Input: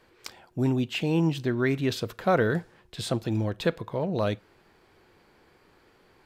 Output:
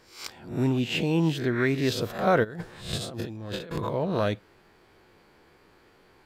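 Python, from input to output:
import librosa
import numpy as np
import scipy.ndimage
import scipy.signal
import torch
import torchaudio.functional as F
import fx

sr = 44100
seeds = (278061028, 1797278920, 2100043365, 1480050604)

y = fx.spec_swells(x, sr, rise_s=0.45)
y = fx.over_compress(y, sr, threshold_db=-36.0, ratio=-1.0, at=(2.43, 3.9), fade=0.02)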